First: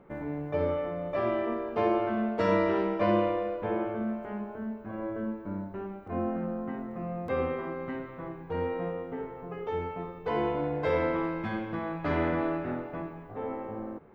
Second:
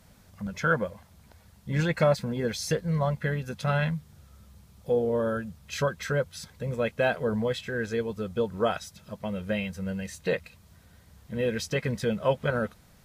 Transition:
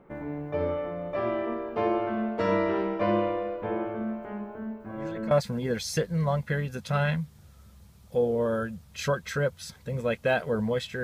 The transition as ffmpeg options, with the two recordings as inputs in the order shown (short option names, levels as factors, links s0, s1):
-filter_complex "[1:a]asplit=2[s0][s1];[0:a]apad=whole_dur=11.03,atrim=end=11.03,atrim=end=5.312[s2];[s1]atrim=start=2.048:end=7.77[s3];[s0]atrim=start=1.54:end=2.05,asetpts=PTS-STARTPTS,volume=0.141,afade=t=in:d=0.004:c=hsin,afade=t=out:st=0.506:d=0.004:c=hsin,adelay=4800[s4];[s2][s3]acrossfade=d=0.004:c1=hsin:c2=hsin[s5];[s5][s4]amix=inputs=2:normalize=0"